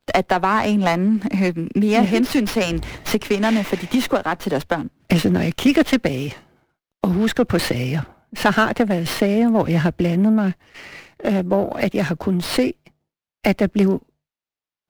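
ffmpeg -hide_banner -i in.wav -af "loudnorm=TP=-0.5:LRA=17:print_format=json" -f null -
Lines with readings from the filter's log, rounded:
"input_i" : "-19.7",
"input_tp" : "-2.5",
"input_lra" : "3.6",
"input_thresh" : "-30.3",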